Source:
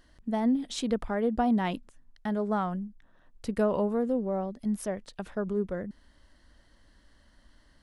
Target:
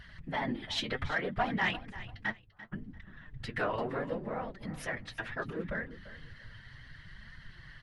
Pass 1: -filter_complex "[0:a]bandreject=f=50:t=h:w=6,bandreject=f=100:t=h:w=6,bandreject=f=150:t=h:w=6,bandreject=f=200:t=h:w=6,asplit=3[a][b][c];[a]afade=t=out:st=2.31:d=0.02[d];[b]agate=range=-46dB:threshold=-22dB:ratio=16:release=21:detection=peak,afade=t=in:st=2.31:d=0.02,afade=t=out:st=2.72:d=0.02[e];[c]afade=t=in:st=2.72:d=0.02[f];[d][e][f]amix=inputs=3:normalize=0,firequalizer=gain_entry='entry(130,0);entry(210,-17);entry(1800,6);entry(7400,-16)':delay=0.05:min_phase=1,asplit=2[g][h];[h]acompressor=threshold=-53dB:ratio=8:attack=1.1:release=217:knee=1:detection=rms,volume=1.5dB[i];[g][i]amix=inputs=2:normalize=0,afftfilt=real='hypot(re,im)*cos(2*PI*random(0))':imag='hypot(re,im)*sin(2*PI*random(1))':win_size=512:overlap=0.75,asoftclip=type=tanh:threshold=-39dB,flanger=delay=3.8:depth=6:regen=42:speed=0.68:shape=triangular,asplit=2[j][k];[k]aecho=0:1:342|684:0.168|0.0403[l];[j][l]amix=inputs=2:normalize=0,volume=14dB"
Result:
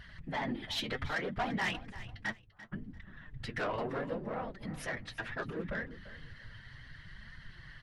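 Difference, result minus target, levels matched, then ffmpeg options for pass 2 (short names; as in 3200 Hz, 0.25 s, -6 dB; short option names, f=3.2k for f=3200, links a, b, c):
soft clip: distortion +12 dB
-filter_complex "[0:a]bandreject=f=50:t=h:w=6,bandreject=f=100:t=h:w=6,bandreject=f=150:t=h:w=6,bandreject=f=200:t=h:w=6,asplit=3[a][b][c];[a]afade=t=out:st=2.31:d=0.02[d];[b]agate=range=-46dB:threshold=-22dB:ratio=16:release=21:detection=peak,afade=t=in:st=2.31:d=0.02,afade=t=out:st=2.72:d=0.02[e];[c]afade=t=in:st=2.72:d=0.02[f];[d][e][f]amix=inputs=3:normalize=0,firequalizer=gain_entry='entry(130,0);entry(210,-17);entry(1800,6);entry(7400,-16)':delay=0.05:min_phase=1,asplit=2[g][h];[h]acompressor=threshold=-53dB:ratio=8:attack=1.1:release=217:knee=1:detection=rms,volume=1.5dB[i];[g][i]amix=inputs=2:normalize=0,afftfilt=real='hypot(re,im)*cos(2*PI*random(0))':imag='hypot(re,im)*sin(2*PI*random(1))':win_size=512:overlap=0.75,asoftclip=type=tanh:threshold=-30dB,flanger=delay=3.8:depth=6:regen=42:speed=0.68:shape=triangular,asplit=2[j][k];[k]aecho=0:1:342|684:0.168|0.0403[l];[j][l]amix=inputs=2:normalize=0,volume=14dB"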